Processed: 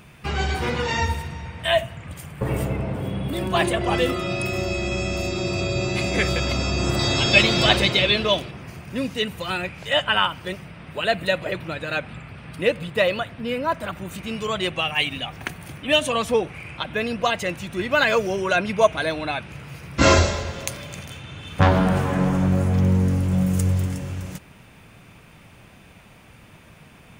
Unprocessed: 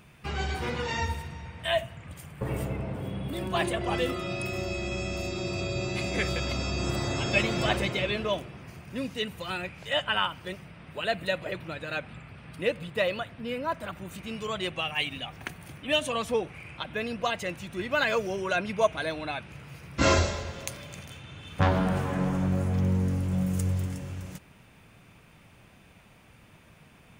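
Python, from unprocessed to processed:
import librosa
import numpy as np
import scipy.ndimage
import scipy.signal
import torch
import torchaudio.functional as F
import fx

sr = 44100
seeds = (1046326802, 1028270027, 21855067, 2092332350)

y = fx.peak_eq(x, sr, hz=4000.0, db=10.0, octaves=0.91, at=(6.99, 8.51))
y = y * 10.0 ** (7.0 / 20.0)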